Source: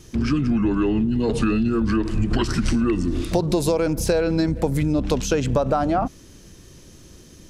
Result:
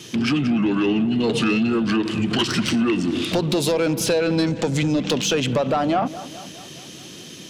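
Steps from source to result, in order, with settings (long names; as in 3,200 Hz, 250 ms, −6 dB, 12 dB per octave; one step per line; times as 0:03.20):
high-pass filter 130 Hz 24 dB per octave
parametric band 3,100 Hz +11.5 dB 1 octave
in parallel at +1.5 dB: downward compressor, threshold −31 dBFS, peak gain reduction 15 dB
0:04.46–0:05.11: on the sum: low-pass with resonance 6,800 Hz, resonance Q 2.6
soft clipping −13 dBFS, distortion −16 dB
delay with a low-pass on its return 208 ms, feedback 57%, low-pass 2,400 Hz, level −15.5 dB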